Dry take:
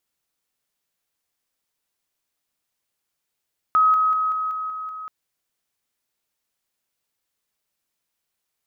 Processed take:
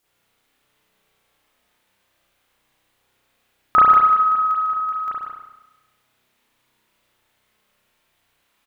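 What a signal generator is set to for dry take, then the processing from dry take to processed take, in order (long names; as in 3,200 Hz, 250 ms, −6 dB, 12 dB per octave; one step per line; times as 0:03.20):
level staircase 1,270 Hz −13 dBFS, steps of −3 dB, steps 7, 0.19 s 0.00 s
in parallel at +1.5 dB: downward compressor, threshold −29 dBFS
on the sum: single-tap delay 151 ms −7 dB
spring reverb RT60 1 s, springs 32 ms, chirp 25 ms, DRR −10 dB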